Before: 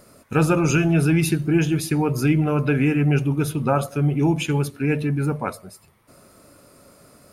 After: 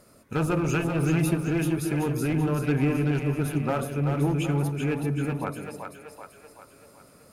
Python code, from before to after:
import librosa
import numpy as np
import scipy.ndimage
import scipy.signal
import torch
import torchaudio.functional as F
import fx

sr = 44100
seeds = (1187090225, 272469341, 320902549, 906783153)

p1 = fx.dynamic_eq(x, sr, hz=4600.0, q=1.1, threshold_db=-46.0, ratio=4.0, max_db=-7)
p2 = fx.clip_asym(p1, sr, top_db=-18.5, bottom_db=-11.5)
p3 = p2 + fx.echo_split(p2, sr, split_hz=460.0, low_ms=146, high_ms=383, feedback_pct=52, wet_db=-5.0, dry=0)
y = p3 * librosa.db_to_amplitude(-5.5)